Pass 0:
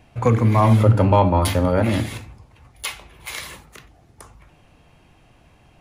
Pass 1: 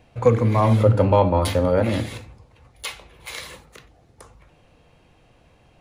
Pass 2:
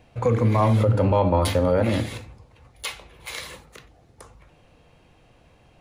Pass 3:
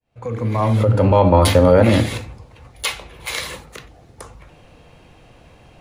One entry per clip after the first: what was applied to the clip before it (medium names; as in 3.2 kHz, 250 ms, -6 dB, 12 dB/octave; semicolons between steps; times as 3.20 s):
graphic EQ with 31 bands 500 Hz +8 dB, 4 kHz +3 dB, 12.5 kHz -7 dB; trim -3 dB
peak limiter -10.5 dBFS, peak gain reduction 7 dB
fade-in on the opening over 1.52 s; trim +8.5 dB